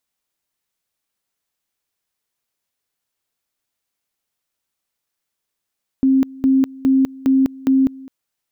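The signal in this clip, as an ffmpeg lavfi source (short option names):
-f lavfi -i "aevalsrc='pow(10,(-10.5-22.5*gte(mod(t,0.41),0.2))/20)*sin(2*PI*266*t)':d=2.05:s=44100"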